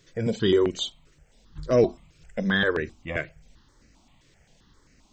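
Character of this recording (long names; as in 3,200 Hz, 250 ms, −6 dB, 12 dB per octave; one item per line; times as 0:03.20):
notches that jump at a steady rate 7.6 Hz 220–3,400 Hz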